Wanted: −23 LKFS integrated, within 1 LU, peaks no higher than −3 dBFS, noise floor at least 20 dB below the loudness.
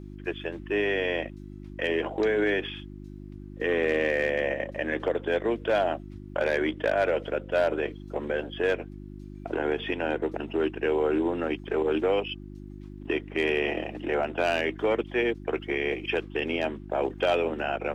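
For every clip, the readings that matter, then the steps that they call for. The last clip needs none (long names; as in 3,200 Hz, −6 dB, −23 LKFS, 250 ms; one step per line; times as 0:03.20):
mains hum 50 Hz; hum harmonics up to 350 Hz; level of the hum −39 dBFS; integrated loudness −28.0 LKFS; sample peak −13.5 dBFS; target loudness −23.0 LKFS
→ hum removal 50 Hz, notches 7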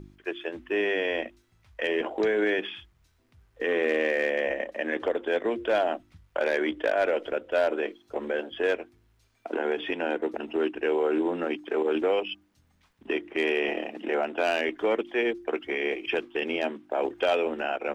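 mains hum none found; integrated loudness −28.0 LKFS; sample peak −14.0 dBFS; target loudness −23.0 LKFS
→ level +5 dB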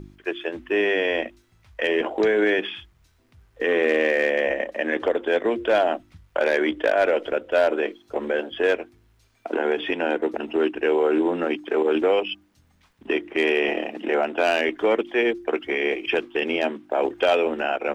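integrated loudness −23.0 LKFS; sample peak −9.0 dBFS; background noise floor −61 dBFS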